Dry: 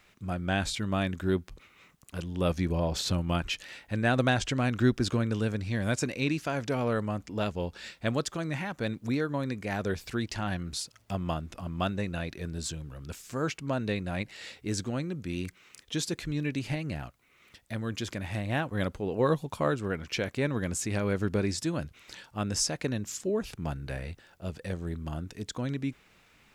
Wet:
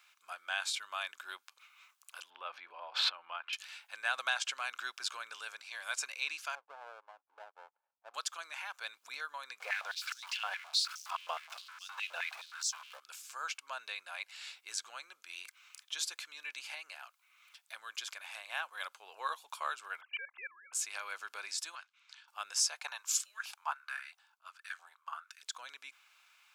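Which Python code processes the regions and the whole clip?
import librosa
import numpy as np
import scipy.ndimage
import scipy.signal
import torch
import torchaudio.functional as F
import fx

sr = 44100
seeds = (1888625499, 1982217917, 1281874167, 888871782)

y = fx.chain(x, sr, fx.air_absorb(metres=450.0),
    fx.pre_swell(db_per_s=27.0), at=(2.3, 3.53))
y = fx.chain(y, sr, fx.cheby1_bandpass(low_hz=270.0, high_hz=860.0, order=3),
    fx.power_curve(exponent=1.4), at=(6.55, 8.14))
y = fx.chain(y, sr, fx.zero_step(step_db=-36.0),
    fx.high_shelf(hz=6200.0, db=-11.5),
    fx.filter_held_highpass(hz=9.6, low_hz=490.0, high_hz=5700.0), at=(9.6, 13.0))
y = fx.chain(y, sr, fx.sine_speech(),
    fx.highpass(hz=510.0, slope=12),
    fx.level_steps(step_db=17), at=(20.01, 20.73))
y = fx.chain(y, sr, fx.law_mismatch(coded='A'),
    fx.highpass(hz=860.0, slope=24),
    fx.air_absorb(metres=88.0), at=(21.75, 22.28))
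y = fx.chain(y, sr, fx.filter_lfo_highpass(shape='saw_up', hz=1.5, low_hz=720.0, high_hz=1700.0, q=3.7),
    fx.band_widen(depth_pct=100), at=(22.79, 25.43))
y = scipy.signal.sosfilt(scipy.signal.butter(4, 1000.0, 'highpass', fs=sr, output='sos'), y)
y = fx.notch(y, sr, hz=1900.0, q=5.6)
y = y * librosa.db_to_amplitude(-1.5)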